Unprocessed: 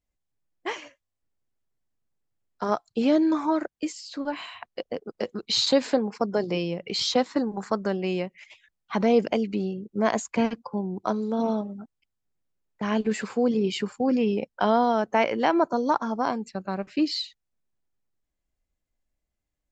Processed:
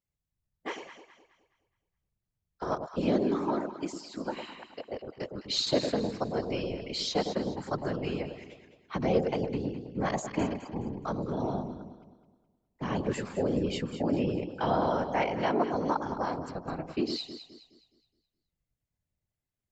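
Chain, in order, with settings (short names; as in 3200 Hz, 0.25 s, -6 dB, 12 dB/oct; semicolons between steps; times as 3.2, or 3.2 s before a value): whisperiser; echo with dull and thin repeats by turns 0.105 s, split 910 Hz, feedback 60%, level -6.5 dB; gain -6.5 dB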